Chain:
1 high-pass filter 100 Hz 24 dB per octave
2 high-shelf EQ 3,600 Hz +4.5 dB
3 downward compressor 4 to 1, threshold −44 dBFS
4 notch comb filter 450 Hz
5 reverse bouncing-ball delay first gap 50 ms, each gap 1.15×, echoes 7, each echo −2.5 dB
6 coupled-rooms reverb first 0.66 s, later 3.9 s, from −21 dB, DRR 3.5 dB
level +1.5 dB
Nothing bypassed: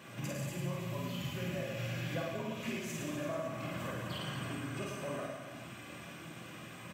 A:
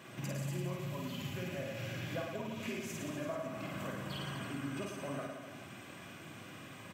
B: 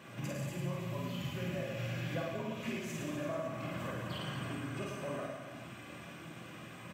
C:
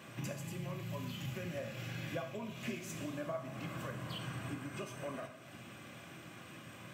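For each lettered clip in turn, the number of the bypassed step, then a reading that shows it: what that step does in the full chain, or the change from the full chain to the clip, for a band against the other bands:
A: 6, change in integrated loudness −1.5 LU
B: 2, 8 kHz band −3.5 dB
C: 5, echo-to-direct ratio 3.5 dB to −3.5 dB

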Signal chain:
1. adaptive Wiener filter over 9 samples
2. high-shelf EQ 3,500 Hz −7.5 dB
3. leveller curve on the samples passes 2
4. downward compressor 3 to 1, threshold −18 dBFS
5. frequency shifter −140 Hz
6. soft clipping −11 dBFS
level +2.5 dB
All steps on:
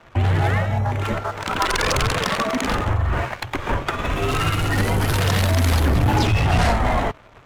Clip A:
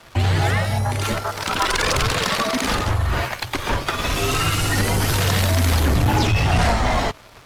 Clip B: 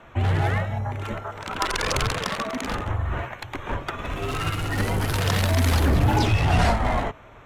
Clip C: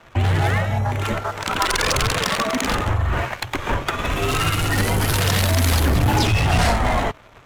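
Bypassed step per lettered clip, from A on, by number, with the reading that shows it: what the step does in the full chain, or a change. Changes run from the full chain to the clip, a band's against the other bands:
1, 8 kHz band +5.0 dB
3, change in crest factor +3.0 dB
2, 8 kHz band +4.5 dB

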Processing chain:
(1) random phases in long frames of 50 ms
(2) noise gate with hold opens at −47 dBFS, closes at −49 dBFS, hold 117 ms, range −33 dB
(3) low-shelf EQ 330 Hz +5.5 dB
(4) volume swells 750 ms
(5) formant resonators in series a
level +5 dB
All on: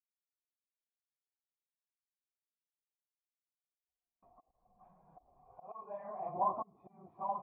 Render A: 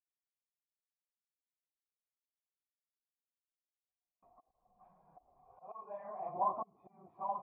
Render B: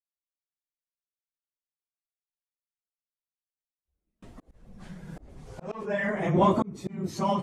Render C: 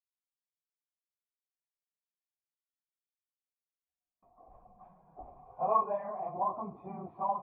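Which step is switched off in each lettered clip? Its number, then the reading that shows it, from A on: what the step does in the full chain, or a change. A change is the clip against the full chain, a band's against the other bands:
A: 3, 125 Hz band −3.5 dB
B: 5, 1 kHz band −20.0 dB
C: 4, change in crest factor −2.5 dB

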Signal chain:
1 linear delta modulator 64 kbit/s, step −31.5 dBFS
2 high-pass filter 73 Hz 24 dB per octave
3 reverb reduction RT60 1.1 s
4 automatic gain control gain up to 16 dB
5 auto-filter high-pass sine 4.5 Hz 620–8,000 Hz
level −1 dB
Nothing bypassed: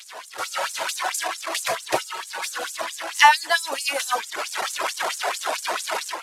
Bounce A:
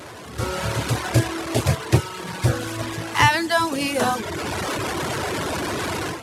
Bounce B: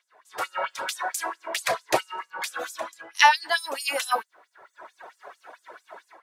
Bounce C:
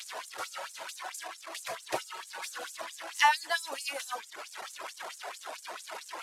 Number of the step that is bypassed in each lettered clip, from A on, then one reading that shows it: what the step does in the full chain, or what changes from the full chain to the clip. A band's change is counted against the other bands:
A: 5, 250 Hz band +19.5 dB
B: 1, 8 kHz band −4.0 dB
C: 4, change in integrated loudness −11.5 LU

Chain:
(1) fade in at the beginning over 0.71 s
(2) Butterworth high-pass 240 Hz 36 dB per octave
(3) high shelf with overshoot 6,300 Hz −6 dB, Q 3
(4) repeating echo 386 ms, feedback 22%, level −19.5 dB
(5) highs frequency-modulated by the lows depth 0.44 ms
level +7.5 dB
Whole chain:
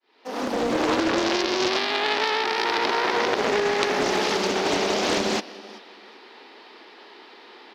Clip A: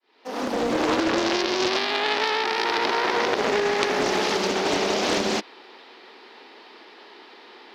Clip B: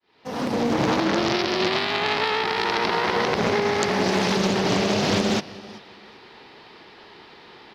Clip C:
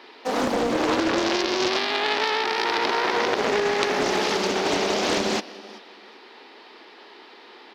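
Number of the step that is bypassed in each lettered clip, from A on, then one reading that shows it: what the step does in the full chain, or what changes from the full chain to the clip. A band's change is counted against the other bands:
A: 4, change in momentary loudness spread −3 LU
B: 2, 125 Hz band +11.0 dB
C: 1, change in momentary loudness spread −2 LU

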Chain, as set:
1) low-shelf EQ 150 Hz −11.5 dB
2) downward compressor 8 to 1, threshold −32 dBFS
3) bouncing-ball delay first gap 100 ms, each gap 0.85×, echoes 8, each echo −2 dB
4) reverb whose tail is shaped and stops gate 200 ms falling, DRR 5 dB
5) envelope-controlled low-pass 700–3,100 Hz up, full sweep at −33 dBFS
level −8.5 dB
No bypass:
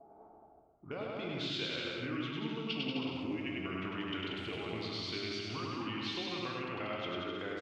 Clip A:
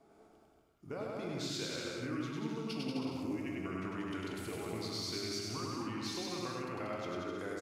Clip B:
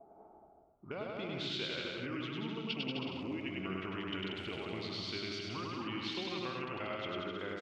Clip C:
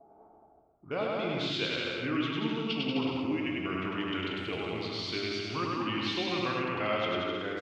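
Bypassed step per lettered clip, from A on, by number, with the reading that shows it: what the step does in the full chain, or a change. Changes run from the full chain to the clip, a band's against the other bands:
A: 5, change in integrated loudness −1.5 LU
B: 4, change in crest factor +2.0 dB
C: 2, average gain reduction 5.0 dB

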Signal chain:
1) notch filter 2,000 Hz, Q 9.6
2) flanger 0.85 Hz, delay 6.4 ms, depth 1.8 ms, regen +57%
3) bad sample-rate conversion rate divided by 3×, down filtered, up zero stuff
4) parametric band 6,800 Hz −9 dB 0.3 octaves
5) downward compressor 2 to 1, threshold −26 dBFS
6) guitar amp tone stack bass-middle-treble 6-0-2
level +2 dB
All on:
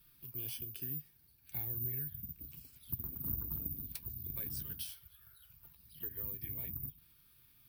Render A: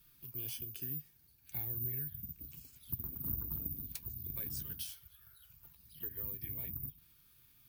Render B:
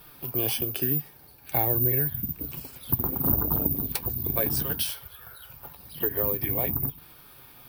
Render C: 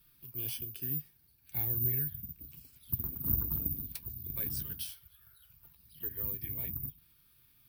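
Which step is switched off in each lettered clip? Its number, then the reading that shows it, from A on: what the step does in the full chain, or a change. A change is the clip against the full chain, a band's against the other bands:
4, 8 kHz band +1.5 dB
6, 1 kHz band +10.5 dB
5, average gain reduction 3.0 dB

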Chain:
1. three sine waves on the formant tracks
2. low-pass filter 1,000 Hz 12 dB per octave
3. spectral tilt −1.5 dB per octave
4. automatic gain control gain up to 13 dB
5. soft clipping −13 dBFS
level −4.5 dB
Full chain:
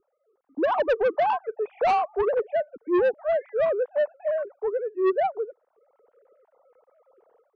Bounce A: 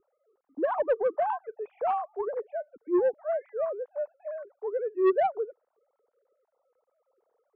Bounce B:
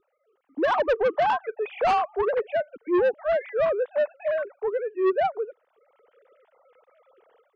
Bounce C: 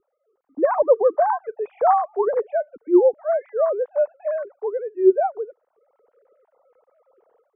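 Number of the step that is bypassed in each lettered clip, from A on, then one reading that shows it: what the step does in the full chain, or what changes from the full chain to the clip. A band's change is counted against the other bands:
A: 4, change in crest factor +4.5 dB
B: 2, 2 kHz band +2.5 dB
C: 5, distortion level −9 dB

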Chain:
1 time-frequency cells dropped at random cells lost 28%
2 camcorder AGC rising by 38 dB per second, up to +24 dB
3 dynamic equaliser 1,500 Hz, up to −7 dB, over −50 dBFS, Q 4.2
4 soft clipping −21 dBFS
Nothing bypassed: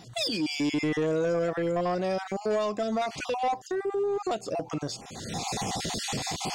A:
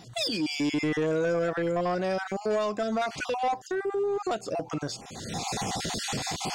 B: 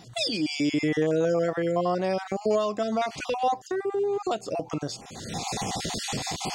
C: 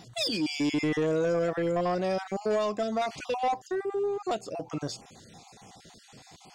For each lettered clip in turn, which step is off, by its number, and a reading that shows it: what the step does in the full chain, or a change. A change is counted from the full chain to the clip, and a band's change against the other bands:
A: 3, 2 kHz band +2.0 dB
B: 4, distortion level −16 dB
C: 2, change in momentary loudness spread +2 LU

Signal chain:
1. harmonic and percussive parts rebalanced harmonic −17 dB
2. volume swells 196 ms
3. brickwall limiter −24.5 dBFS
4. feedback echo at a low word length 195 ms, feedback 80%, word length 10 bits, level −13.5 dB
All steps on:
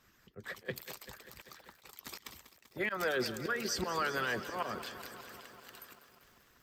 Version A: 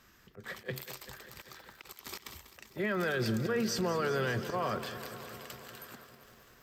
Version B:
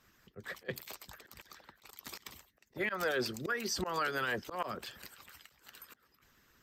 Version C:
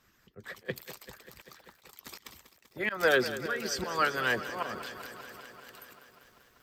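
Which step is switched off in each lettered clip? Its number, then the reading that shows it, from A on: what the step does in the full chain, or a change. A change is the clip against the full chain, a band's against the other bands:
1, 125 Hz band +10.0 dB
4, change in momentary loudness spread +2 LU
3, change in crest factor +5.0 dB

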